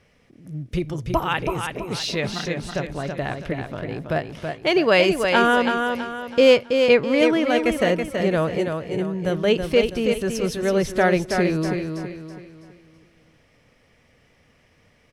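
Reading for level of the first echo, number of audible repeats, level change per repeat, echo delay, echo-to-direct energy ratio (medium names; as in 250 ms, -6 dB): -5.5 dB, 4, -8.0 dB, 327 ms, -5.0 dB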